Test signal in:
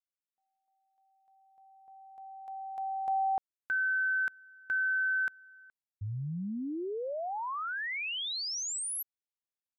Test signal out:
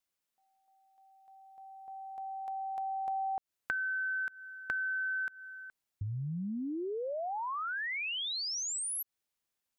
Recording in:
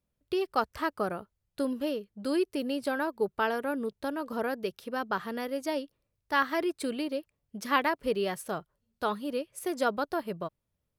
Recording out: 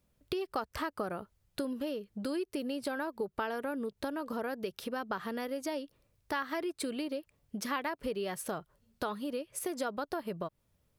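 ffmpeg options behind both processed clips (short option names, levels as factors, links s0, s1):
-af "acompressor=threshold=0.00447:ratio=3:attack=15:release=216:knee=6:detection=peak,volume=2.66"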